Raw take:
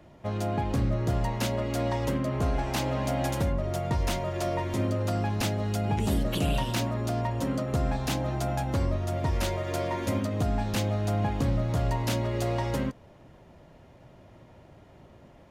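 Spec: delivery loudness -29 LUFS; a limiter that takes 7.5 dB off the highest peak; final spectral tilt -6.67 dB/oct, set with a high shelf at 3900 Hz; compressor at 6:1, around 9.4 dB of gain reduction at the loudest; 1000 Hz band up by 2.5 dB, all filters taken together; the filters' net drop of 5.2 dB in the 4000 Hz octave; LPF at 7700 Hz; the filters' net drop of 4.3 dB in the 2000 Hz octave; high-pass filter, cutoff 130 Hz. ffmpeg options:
-af "highpass=130,lowpass=7.7k,equalizer=f=1k:t=o:g=4.5,equalizer=f=2k:t=o:g=-6,highshelf=f=3.9k:g=5,equalizer=f=4k:t=o:g=-8,acompressor=threshold=-35dB:ratio=6,volume=11.5dB,alimiter=limit=-20dB:level=0:latency=1"

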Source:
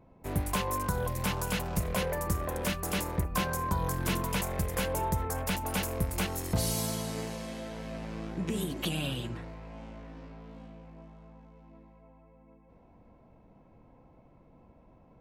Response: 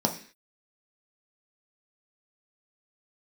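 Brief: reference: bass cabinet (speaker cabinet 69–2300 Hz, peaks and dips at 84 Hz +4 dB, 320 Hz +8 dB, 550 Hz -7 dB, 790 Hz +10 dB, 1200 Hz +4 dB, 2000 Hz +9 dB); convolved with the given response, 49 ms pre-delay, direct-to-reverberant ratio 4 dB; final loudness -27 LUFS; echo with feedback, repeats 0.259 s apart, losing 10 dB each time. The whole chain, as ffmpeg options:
-filter_complex "[0:a]aecho=1:1:259|518|777|1036:0.316|0.101|0.0324|0.0104,asplit=2[a][b];[1:a]atrim=start_sample=2205,adelay=49[c];[b][c]afir=irnorm=-1:irlink=0,volume=-14dB[d];[a][d]amix=inputs=2:normalize=0,highpass=f=69:w=0.5412,highpass=f=69:w=1.3066,equalizer=f=84:t=q:w=4:g=4,equalizer=f=320:t=q:w=4:g=8,equalizer=f=550:t=q:w=4:g=-7,equalizer=f=790:t=q:w=4:g=10,equalizer=f=1.2k:t=q:w=4:g=4,equalizer=f=2k:t=q:w=4:g=9,lowpass=f=2.3k:w=0.5412,lowpass=f=2.3k:w=1.3066,volume=0.5dB"

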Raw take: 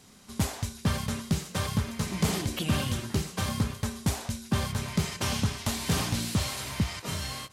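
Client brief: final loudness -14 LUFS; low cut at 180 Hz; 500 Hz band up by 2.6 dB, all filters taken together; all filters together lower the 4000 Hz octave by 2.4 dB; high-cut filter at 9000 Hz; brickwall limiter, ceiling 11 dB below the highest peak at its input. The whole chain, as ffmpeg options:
-af "highpass=180,lowpass=9k,equalizer=f=500:t=o:g=3.5,equalizer=f=4k:t=o:g=-3,volume=22.5dB,alimiter=limit=-3.5dB:level=0:latency=1"

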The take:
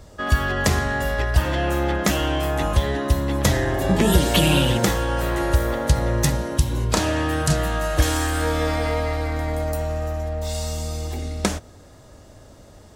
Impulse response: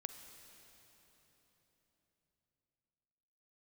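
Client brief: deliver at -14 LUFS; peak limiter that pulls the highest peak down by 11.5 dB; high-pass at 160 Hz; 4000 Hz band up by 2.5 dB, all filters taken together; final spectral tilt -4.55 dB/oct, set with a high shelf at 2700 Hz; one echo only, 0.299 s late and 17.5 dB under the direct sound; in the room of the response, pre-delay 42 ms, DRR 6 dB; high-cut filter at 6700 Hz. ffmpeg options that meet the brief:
-filter_complex "[0:a]highpass=160,lowpass=6.7k,highshelf=f=2.7k:g=-4.5,equalizer=f=4k:t=o:g=7.5,alimiter=limit=-14.5dB:level=0:latency=1,aecho=1:1:299:0.133,asplit=2[a][b];[1:a]atrim=start_sample=2205,adelay=42[c];[b][c]afir=irnorm=-1:irlink=0,volume=-3dB[d];[a][d]amix=inputs=2:normalize=0,volume=10.5dB"

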